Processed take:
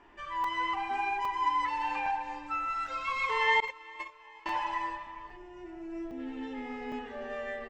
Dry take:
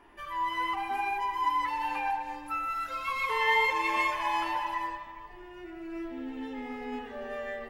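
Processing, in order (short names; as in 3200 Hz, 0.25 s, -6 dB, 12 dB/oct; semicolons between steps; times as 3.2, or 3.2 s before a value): Chebyshev low-pass 8000 Hz, order 6; 3.6–4.46 gate -24 dBFS, range -28 dB; 5.37–6.19 spectral gain 840–5000 Hz -7 dB; feedback echo 0.397 s, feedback 51%, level -23 dB; crackling interface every 0.81 s, samples 128, zero, from 0.44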